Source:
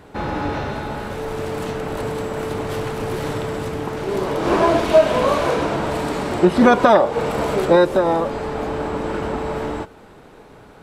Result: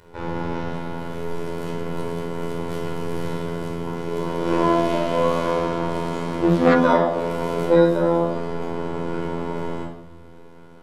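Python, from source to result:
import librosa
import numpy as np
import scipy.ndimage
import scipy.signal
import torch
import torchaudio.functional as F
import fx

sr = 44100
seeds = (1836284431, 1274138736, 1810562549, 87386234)

y = fx.robotise(x, sr, hz=84.7)
y = fx.room_shoebox(y, sr, seeds[0], volume_m3=2000.0, walls='furnished', distance_m=4.8)
y = fx.doppler_dist(y, sr, depth_ms=0.36, at=(5.46, 6.76))
y = y * 10.0 ** (-7.5 / 20.0)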